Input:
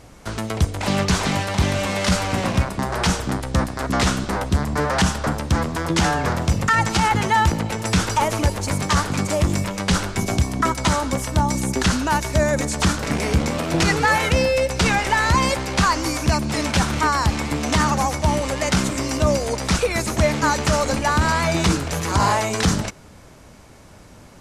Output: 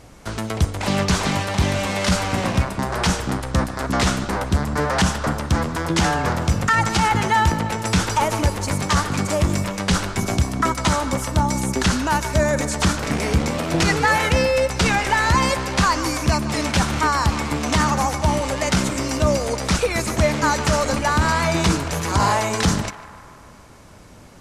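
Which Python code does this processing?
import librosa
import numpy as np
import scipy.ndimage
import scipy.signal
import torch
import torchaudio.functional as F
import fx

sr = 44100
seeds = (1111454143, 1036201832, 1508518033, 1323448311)

y = x + fx.echo_banded(x, sr, ms=149, feedback_pct=71, hz=1200.0, wet_db=-12.5, dry=0)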